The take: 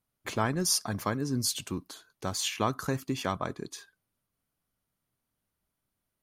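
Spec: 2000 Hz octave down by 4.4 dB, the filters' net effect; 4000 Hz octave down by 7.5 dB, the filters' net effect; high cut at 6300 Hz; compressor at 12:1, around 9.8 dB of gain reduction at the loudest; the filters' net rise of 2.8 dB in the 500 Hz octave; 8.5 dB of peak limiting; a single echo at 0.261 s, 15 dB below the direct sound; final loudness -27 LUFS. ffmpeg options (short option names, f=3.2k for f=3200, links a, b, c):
-af "lowpass=6.3k,equalizer=f=500:t=o:g=4,equalizer=f=2k:t=o:g=-4.5,equalizer=f=4k:t=o:g=-8,acompressor=threshold=-33dB:ratio=12,alimiter=level_in=5.5dB:limit=-24dB:level=0:latency=1,volume=-5.5dB,aecho=1:1:261:0.178,volume=14.5dB"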